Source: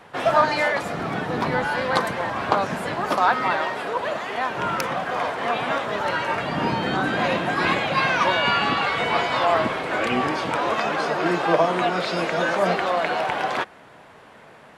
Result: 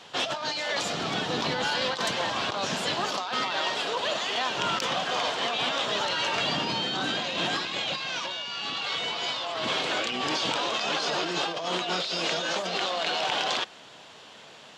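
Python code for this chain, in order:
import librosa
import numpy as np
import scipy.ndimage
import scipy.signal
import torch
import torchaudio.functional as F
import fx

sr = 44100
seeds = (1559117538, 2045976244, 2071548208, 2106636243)

y = fx.self_delay(x, sr, depth_ms=0.062)
y = fx.band_shelf(y, sr, hz=4600.0, db=14.5, octaves=1.7)
y = fx.over_compress(y, sr, threshold_db=-23.0, ratio=-1.0)
y = fx.low_shelf(y, sr, hz=80.0, db=-11.0)
y = F.gain(torch.from_numpy(y), -6.0).numpy()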